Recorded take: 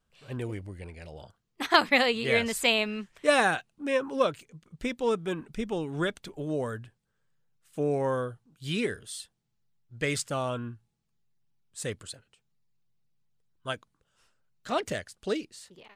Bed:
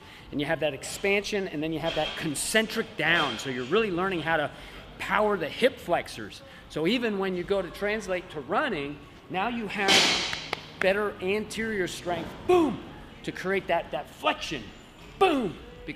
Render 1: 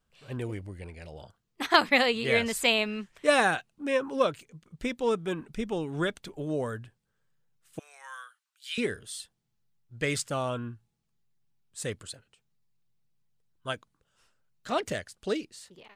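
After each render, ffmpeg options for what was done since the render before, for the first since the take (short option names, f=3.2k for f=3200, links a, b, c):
-filter_complex "[0:a]asettb=1/sr,asplit=3[a][b][c];[a]atrim=end=7.794[d];[b]atrim=start=7.79:end=8.78,asetpts=PTS-STARTPTS,afade=t=in:d=0.004:c=qsin,afade=t=out:st=0.986:d=0.004:c=qsin,highpass=f=1.4k:w=0.5412,highpass=f=1.4k:w=1.3066[e];[c]atrim=start=8.776[f];[d][e]acrossfade=d=0.004:c1=hsin:c2=qsin[g];[g][f]acrossfade=d=0.004:c1=qsin:c2=hsin"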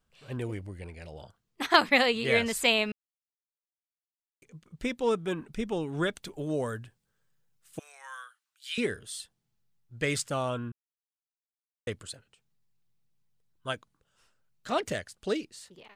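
-filter_complex "[0:a]asettb=1/sr,asplit=3[a][b][c];[a]atrim=end=6.134[d];[b]atrim=start=6.13:end=7.92,asetpts=PTS-STARTPTS,afade=t=in:d=0.004:c=qsin,afade=t=out:st=1.786:d=0.004:c=qsin,highshelf=f=4.3k:g=5[e];[c]atrim=start=7.916[f];[d][e]acrossfade=d=0.004:c1=hsin:c2=qsin[g];[g][f]acrossfade=d=0.004:c1=qsin:c2=hsin,asplit=5[h][i][j][k][l];[h]atrim=end=2.92,asetpts=PTS-STARTPTS,afade=t=out:st=2.916:d=0.004:c=hsin[m];[i]atrim=start=2.92:end=4.42,asetpts=PTS-STARTPTS,volume=0[n];[j]atrim=start=4.42:end=10.72,asetpts=PTS-STARTPTS,afade=t=in:d=0.004:c=hsin,afade=t=out:st=6.296:d=0.004:c=hsin[o];[k]atrim=start=10.72:end=11.87,asetpts=PTS-STARTPTS,volume=0[p];[l]atrim=start=11.87,asetpts=PTS-STARTPTS,afade=t=in:d=0.004:c=hsin[q];[m][n][o][p][q]concat=n=5:v=0:a=1"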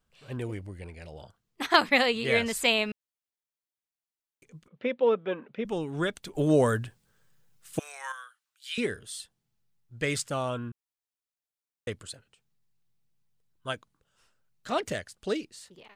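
-filter_complex "[0:a]asettb=1/sr,asplit=3[a][b][c];[a]atrim=end=4.684[d];[b]atrim=start=4.68:end=5.65,asetpts=PTS-STARTPTS,afade=t=in:d=0.004:c=qsin,afade=t=out:st=0.966:d=0.004:c=qsin,highpass=f=160:w=0.5412,highpass=f=160:w=1.3066,equalizer=f=160:t=q:w=4:g=-9,equalizer=f=320:t=q:w=4:g=-6,equalizer=f=530:t=q:w=4:g=10,lowpass=f=3.3k:w=0.5412,lowpass=f=3.3k:w=1.3066[e];[c]atrim=start=5.646[f];[d][e]acrossfade=d=0.004:c1=hsin:c2=qsin[g];[g][f]acrossfade=d=0.004:c1=qsin:c2=hsin,asplit=3[h][i][j];[h]atrim=end=6.352[k];[i]atrim=start=6.348:end=8.122,asetpts=PTS-STARTPTS,volume=9dB[l];[j]atrim=start=8.118[m];[k][l]acrossfade=d=0.004:c1=hsin:c2=hsin[n];[n][m]acrossfade=d=0.004:c1=hsin:c2=hsin"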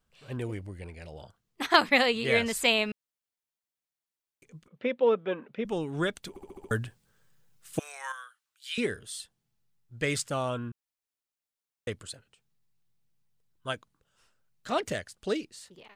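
-filter_complex "[0:a]asplit=7[a][b][c][d][e][f][g];[a]atrim=end=6.362[h];[b]atrim=start=6.288:end=6.362[i];[c]atrim=start=6.288:end=6.362[j];[d]atrim=start=6.288:end=6.362[k];[e]atrim=start=6.288:end=6.362[l];[f]atrim=start=6.288:end=6.362[m];[g]atrim=start=6.708[n];[h][i]acrossfade=d=0.004:c1=hsin:c2=hsin[o];[o][j]acrossfade=d=0.004:c1=hsin:c2=hsin[p];[p][k]acrossfade=d=0.004:c1=hsin:c2=hsin[q];[q][l]acrossfade=d=0.004:c1=hsin:c2=hsin[r];[r][m]acrossfade=d=0.004:c1=hsin:c2=hsin[s];[s][n]acrossfade=d=0.004:c1=hsin:c2=hsin"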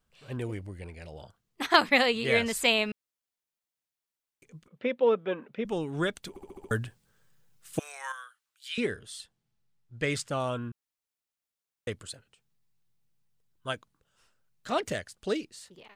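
-filter_complex "[0:a]asettb=1/sr,asplit=3[a][b][c];[a]atrim=end=8.684[d];[b]atrim=start=8.68:end=10.4,asetpts=PTS-STARTPTS,afade=t=in:d=0.004:c=qsin,afade=t=out:st=1.716:d=0.004:c=qsin,highshelf=f=8.1k:g=-9[e];[c]atrim=start=10.396[f];[d][e]acrossfade=d=0.004:c1=hsin:c2=qsin[g];[g][f]acrossfade=d=0.004:c1=qsin:c2=hsin"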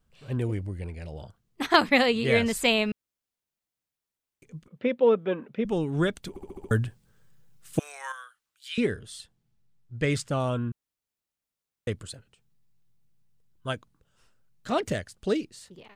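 -af "lowshelf=f=360:g=8.5"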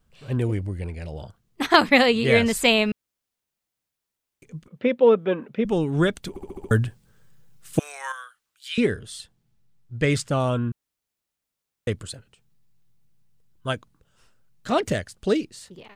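-af "volume=4.5dB,alimiter=limit=-3dB:level=0:latency=1"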